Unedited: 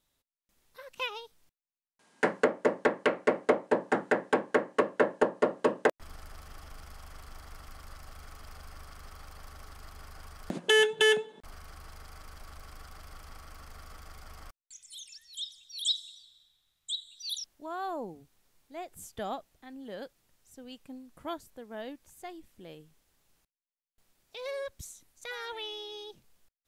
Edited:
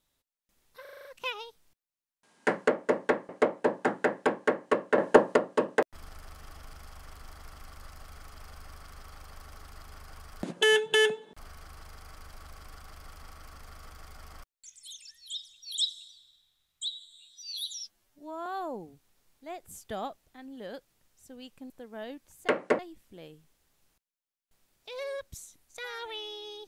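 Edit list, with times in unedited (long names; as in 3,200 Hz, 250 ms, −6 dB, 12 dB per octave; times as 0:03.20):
0:00.81: stutter 0.04 s, 7 plays
0:03.05–0:03.36: move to 0:22.26
0:05.05–0:05.43: clip gain +7.5 dB
0:16.95–0:17.74: time-stretch 2×
0:20.98–0:21.48: remove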